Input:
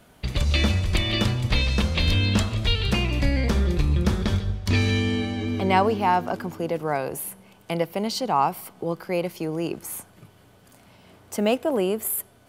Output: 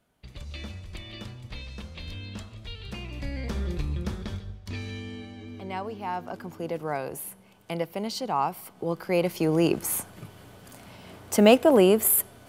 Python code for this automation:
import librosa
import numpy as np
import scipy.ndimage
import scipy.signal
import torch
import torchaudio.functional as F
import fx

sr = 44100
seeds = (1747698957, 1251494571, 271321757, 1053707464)

y = fx.gain(x, sr, db=fx.line((2.69, -17.5), (3.71, -7.5), (4.79, -14.5), (5.82, -14.5), (6.69, -5.0), (8.56, -5.0), (9.58, 5.5)))